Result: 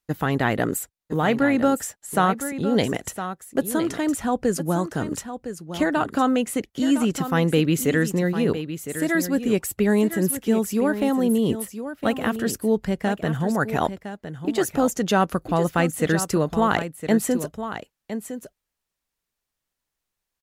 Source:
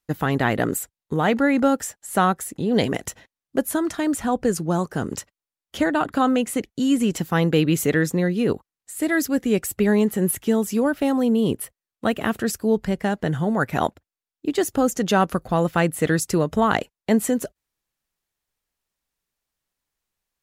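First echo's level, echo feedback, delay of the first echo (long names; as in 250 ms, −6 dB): −10.5 dB, repeats not evenly spaced, 1,010 ms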